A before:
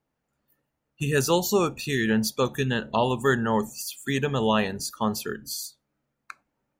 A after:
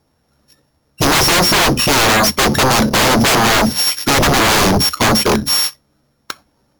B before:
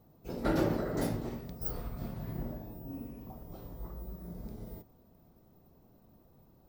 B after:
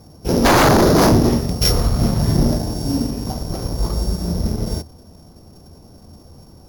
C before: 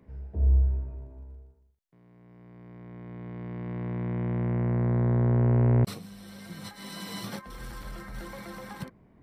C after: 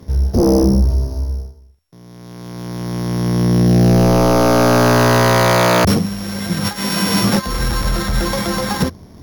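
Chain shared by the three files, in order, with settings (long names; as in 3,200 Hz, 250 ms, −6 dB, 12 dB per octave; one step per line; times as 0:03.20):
samples sorted by size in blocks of 8 samples
dynamic equaliser 250 Hz, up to +8 dB, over −39 dBFS, Q 0.72
leveller curve on the samples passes 1
parametric band 81 Hz +11 dB 0.32 octaves
sine wavefolder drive 19 dB, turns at −4.5 dBFS
level −4 dB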